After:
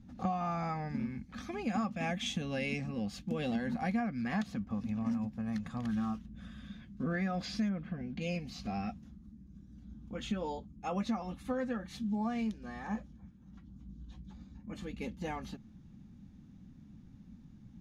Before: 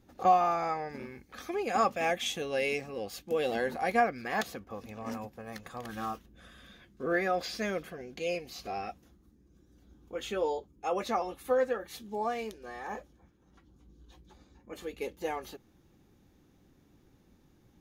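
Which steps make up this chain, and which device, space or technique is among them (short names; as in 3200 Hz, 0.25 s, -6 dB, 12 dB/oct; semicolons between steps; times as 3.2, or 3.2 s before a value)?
7.68–8.2 LPF 1700 Hz -> 3900 Hz 12 dB/oct; jukebox (LPF 7200 Hz 12 dB/oct; resonant low shelf 290 Hz +10 dB, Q 3; compressor 5:1, threshold -28 dBFS, peak gain reduction 10 dB); gain -2.5 dB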